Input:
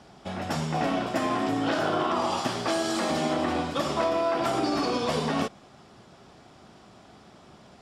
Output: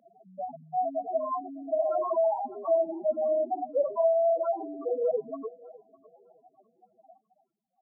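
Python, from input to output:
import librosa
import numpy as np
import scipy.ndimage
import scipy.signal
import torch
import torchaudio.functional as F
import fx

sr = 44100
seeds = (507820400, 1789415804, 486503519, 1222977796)

y = fx.dmg_wind(x, sr, seeds[0], corner_hz=460.0, level_db=-23.0, at=(2.38, 3.19), fade=0.02)
y = fx.spec_topn(y, sr, count=2)
y = fx.rider(y, sr, range_db=4, speed_s=0.5)
y = fx.echo_thinned(y, sr, ms=605, feedback_pct=34, hz=500.0, wet_db=-19.0)
y = fx.filter_sweep_highpass(y, sr, from_hz=550.0, to_hz=1400.0, start_s=6.92, end_s=7.72, q=3.5)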